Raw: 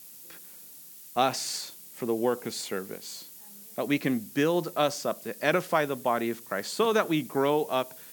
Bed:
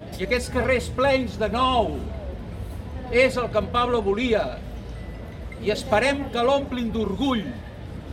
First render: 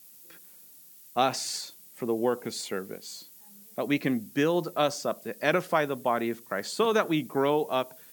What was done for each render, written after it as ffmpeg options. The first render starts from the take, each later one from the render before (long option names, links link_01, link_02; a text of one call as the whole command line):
ffmpeg -i in.wav -af "afftdn=noise_reduction=6:noise_floor=-48" out.wav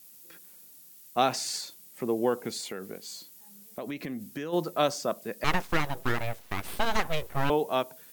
ffmpeg -i in.wav -filter_complex "[0:a]asplit=3[link_01][link_02][link_03];[link_01]afade=type=out:start_time=2.57:duration=0.02[link_04];[link_02]acompressor=threshold=-32dB:ratio=6:attack=3.2:release=140:knee=1:detection=peak,afade=type=in:start_time=2.57:duration=0.02,afade=type=out:start_time=4.52:duration=0.02[link_05];[link_03]afade=type=in:start_time=4.52:duration=0.02[link_06];[link_04][link_05][link_06]amix=inputs=3:normalize=0,asettb=1/sr,asplit=3[link_07][link_08][link_09];[link_07]atrim=end=5.444[link_10];[link_08]atrim=start=5.44:end=7.5,asetpts=PTS-STARTPTS,afade=type=in:duration=0.004:curve=qsin,afade=type=out:start_time=2.056:duration=0.004:curve=qsin,aeval=exprs='abs(val(0))':channel_layout=same[link_11];[link_09]atrim=start=7.496[link_12];[link_10][link_11]acrossfade=duration=0.004:curve1=hsin:curve2=qsin[link_13];[link_13][link_12]acrossfade=duration=0.004:curve1=qsin:curve2=hsin" out.wav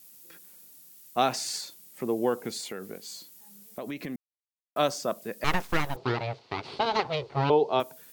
ffmpeg -i in.wav -filter_complex "[0:a]asettb=1/sr,asplit=3[link_01][link_02][link_03];[link_01]atrim=end=5.964[link_04];[link_02]atrim=start=5.96:end=7.8,asetpts=PTS-STARTPTS,afade=type=in:duration=0.004:curve=qsin,afade=type=out:start_time=1.836:duration=0.004:curve=qsin,highpass=120,equalizer=frequency=130:width_type=q:width=4:gain=9,equalizer=frequency=190:width_type=q:width=4:gain=-7,equalizer=frequency=410:width_type=q:width=4:gain=8,equalizer=frequency=860:width_type=q:width=4:gain=5,equalizer=frequency=1700:width_type=q:width=4:gain=-7,equalizer=frequency=4400:width_type=q:width=4:gain=8,lowpass=frequency=5000:width=0.5412,lowpass=frequency=5000:width=1.3066[link_05];[link_03]atrim=start=7.796[link_06];[link_04][link_05]acrossfade=duration=0.004:curve1=hsin:curve2=qsin[link_07];[link_07][link_06]acrossfade=duration=0.004:curve1=qsin:curve2=hsin,asplit=3[link_08][link_09][link_10];[link_08]atrim=end=4.16,asetpts=PTS-STARTPTS,afade=type=out:start_time=4.156:duration=0.004:curve=hsin[link_11];[link_09]atrim=start=4.16:end=4.76,asetpts=PTS-STARTPTS,volume=0[link_12];[link_10]atrim=start=4.76,asetpts=PTS-STARTPTS,afade=type=in:duration=0.004:curve=hsin[link_13];[link_11][link_12][link_13]concat=n=3:v=0:a=1" out.wav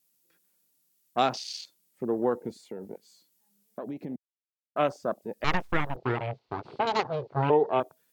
ffmpeg -i in.wav -af "afwtdn=0.0158,highshelf=frequency=8700:gain=-3.5" out.wav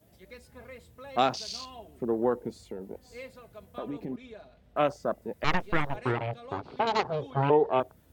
ffmpeg -i in.wav -i bed.wav -filter_complex "[1:a]volume=-25.5dB[link_01];[0:a][link_01]amix=inputs=2:normalize=0" out.wav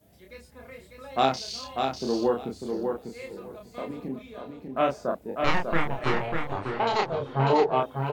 ffmpeg -i in.wav -filter_complex "[0:a]asplit=2[link_01][link_02];[link_02]adelay=30,volume=-3dB[link_03];[link_01][link_03]amix=inputs=2:normalize=0,asplit=2[link_04][link_05];[link_05]aecho=0:1:596|1192|1788:0.562|0.09|0.0144[link_06];[link_04][link_06]amix=inputs=2:normalize=0" out.wav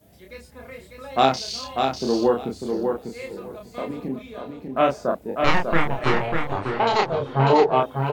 ffmpeg -i in.wav -af "volume=5dB" out.wav